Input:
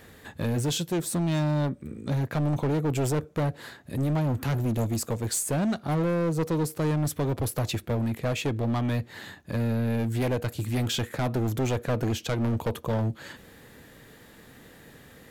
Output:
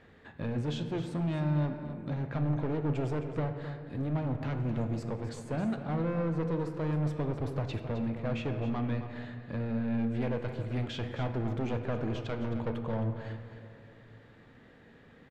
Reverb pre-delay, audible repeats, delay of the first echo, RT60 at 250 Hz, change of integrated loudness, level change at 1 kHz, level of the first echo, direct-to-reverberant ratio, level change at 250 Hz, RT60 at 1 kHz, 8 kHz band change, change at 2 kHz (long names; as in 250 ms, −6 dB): 4 ms, 1, 264 ms, 2.9 s, −5.5 dB, −6.0 dB, −11.5 dB, 5.5 dB, −4.5 dB, 2.4 s, below −20 dB, −7.0 dB